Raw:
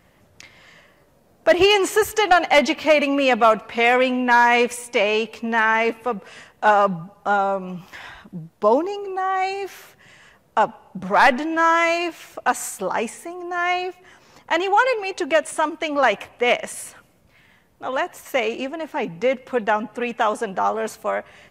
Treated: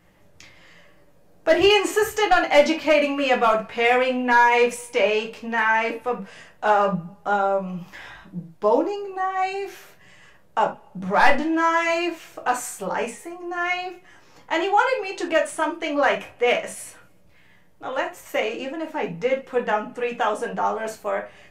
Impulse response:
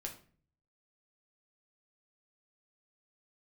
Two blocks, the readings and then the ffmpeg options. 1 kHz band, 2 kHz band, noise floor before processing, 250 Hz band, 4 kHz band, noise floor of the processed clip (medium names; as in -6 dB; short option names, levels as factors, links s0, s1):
-2.0 dB, -2.0 dB, -57 dBFS, -1.5 dB, -2.0 dB, -53 dBFS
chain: -filter_complex "[1:a]atrim=start_sample=2205,atrim=end_sample=3969[s0];[0:a][s0]afir=irnorm=-1:irlink=0"